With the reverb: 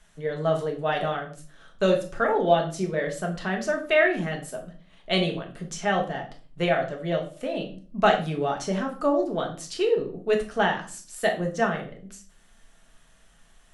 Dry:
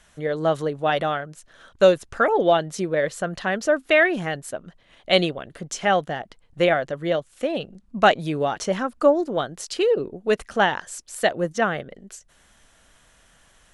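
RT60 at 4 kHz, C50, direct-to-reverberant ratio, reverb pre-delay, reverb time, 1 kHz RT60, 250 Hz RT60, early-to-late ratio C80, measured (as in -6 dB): 0.35 s, 10.0 dB, 1.0 dB, 3 ms, 0.40 s, 0.40 s, 0.60 s, 14.5 dB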